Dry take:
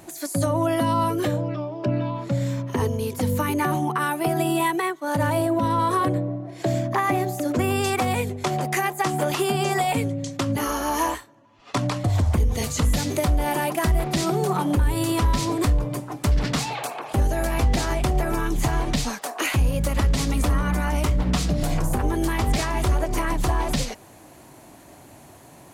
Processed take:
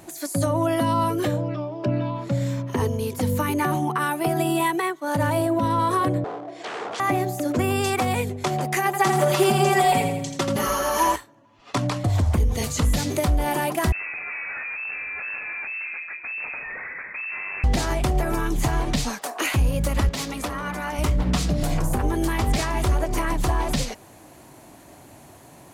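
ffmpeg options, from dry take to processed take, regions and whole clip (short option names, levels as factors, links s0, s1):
-filter_complex "[0:a]asettb=1/sr,asplit=3[s0][s1][s2];[s0]atrim=end=6.244[s3];[s1]atrim=start=6.24:end=7,asetpts=PTS-STARTPTS,afade=t=in:d=0.004:c=qsin,afade=t=out:st=0.756:d=0.004:c=qsin,acrossover=split=3500[s4][s5];[s5]acompressor=threshold=0.00316:ratio=4:attack=1:release=60[s6];[s4][s6]amix=inputs=2:normalize=0,aeval=exprs='0.0355*(abs(mod(val(0)/0.0355+3,4)-2)-1)':c=same,highpass=290,equalizer=f=430:t=q:w=4:g=8,equalizer=f=720:t=q:w=4:g=7,equalizer=f=1200:t=q:w=4:g=3,equalizer=f=3400:t=q:w=4:g=3,lowpass=f=8600:w=0.5412,lowpass=f=8600:w=1.3066[s7];[s2]atrim=start=6.996[s8];[s3][s7]acrossfade=d=0.004:c1=hsin:c2=qsin[s9];[s9][s8]acrossfade=d=0.004:c1=qsin:c2=hsin,asettb=1/sr,asplit=3[s10][s11][s12];[s10]atrim=end=8.854[s13];[s11]atrim=start=8.85:end=11.16,asetpts=PTS-STARTPTS,afade=t=in:d=0.004:c=qsin,afade=t=out:st=2.306:d=0.004:c=qsin,aecho=1:1:5.2:0.71,atrim=end_sample=101871,aecho=1:1:83|166|249|332|415|498:0.447|0.228|0.116|0.0593|0.0302|0.0154,atrim=end_sample=101871[s14];[s12]atrim=start=11.156[s15];[s13][s14]acrossfade=d=0.004:c1=hsin:c2=qsin[s16];[s16][s15]acrossfade=d=0.004:c1=qsin:c2=hsin,asettb=1/sr,asplit=3[s17][s18][s19];[s17]atrim=end=13.924[s20];[s18]atrim=start=13.92:end=17.64,asetpts=PTS-STARTPTS,afade=t=in:d=0.004:c=qsin,afade=t=out:st=3.716:d=0.004:c=qsin,bandreject=f=62.24:t=h:w=4,bandreject=f=124.48:t=h:w=4,bandreject=f=186.72:t=h:w=4,bandreject=f=248.96:t=h:w=4,bandreject=f=311.2:t=h:w=4,bandreject=f=373.44:t=h:w=4,bandreject=f=435.68:t=h:w=4,bandreject=f=497.92:t=h:w=4,bandreject=f=560.16:t=h:w=4,volume=33.5,asoftclip=hard,volume=0.0299,lowpass=f=2300:t=q:w=0.5098,lowpass=f=2300:t=q:w=0.6013,lowpass=f=2300:t=q:w=0.9,lowpass=f=2300:t=q:w=2.563,afreqshift=-2700[s21];[s19]atrim=start=17.636[s22];[s20][s21]acrossfade=d=0.004:c1=hsin:c2=qsin[s23];[s23][s22]acrossfade=d=0.004:c1=qsin:c2=hsin,asettb=1/sr,asplit=3[s24][s25][s26];[s24]atrim=end=20.094[s27];[s25]atrim=start=20.09:end=20.99,asetpts=PTS-STARTPTS,afade=t=in:d=0.004:c=qsin,afade=t=out:st=0.896:d=0.004:c=qsin,highpass=f=430:p=1,adynamicsmooth=sensitivity=7.5:basefreq=5900,equalizer=f=12000:w=2.8:g=9[s28];[s26]atrim=start=20.986[s29];[s27][s28]acrossfade=d=0.004:c1=hsin:c2=qsin[s30];[s30][s29]acrossfade=d=0.004:c1=qsin:c2=hsin"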